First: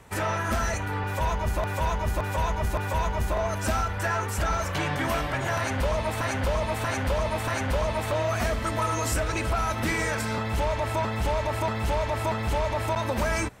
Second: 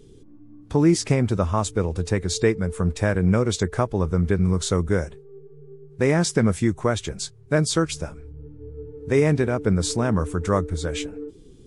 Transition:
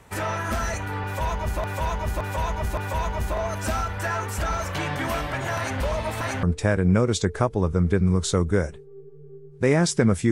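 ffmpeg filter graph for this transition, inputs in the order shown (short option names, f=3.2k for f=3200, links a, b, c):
-filter_complex "[0:a]apad=whole_dur=10.31,atrim=end=10.31,atrim=end=6.432[a];[1:a]atrim=start=2.808:end=6.69[b];[a][b]acrossfade=d=0.004:c1=hsin:c2=hsin"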